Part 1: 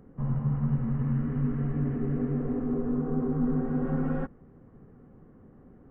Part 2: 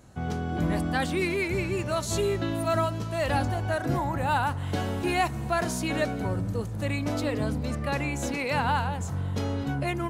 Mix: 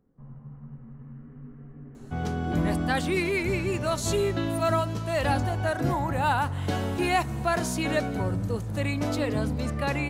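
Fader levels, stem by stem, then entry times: -16.0, +1.0 dB; 0.00, 1.95 s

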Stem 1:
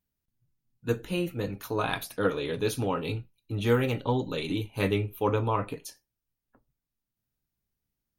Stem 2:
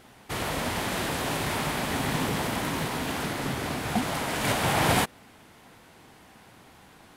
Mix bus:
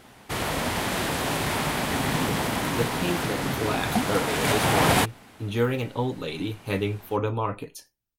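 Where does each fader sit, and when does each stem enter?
0.0, +2.5 dB; 1.90, 0.00 s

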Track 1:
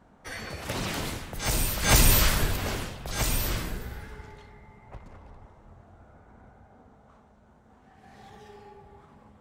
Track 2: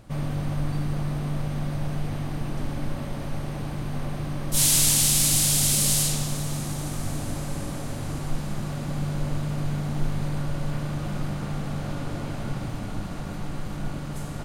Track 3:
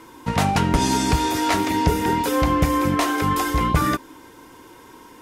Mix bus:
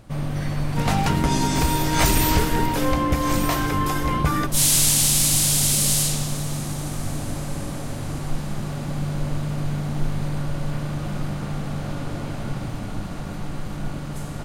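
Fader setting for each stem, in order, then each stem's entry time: -1.5, +2.0, -3.0 dB; 0.10, 0.00, 0.50 s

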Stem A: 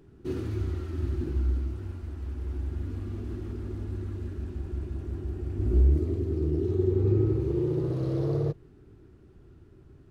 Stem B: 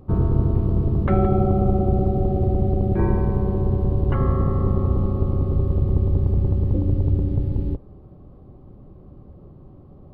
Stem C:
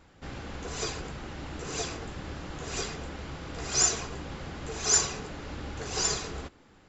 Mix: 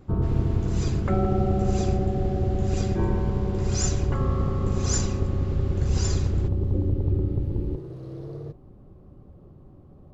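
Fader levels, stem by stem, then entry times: -9.5, -4.5, -6.0 dB; 0.00, 0.00, 0.00 s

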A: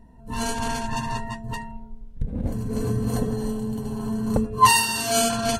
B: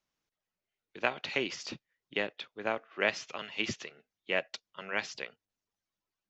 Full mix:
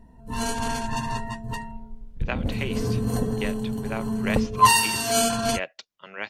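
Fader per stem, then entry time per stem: -0.5, -0.5 dB; 0.00, 1.25 s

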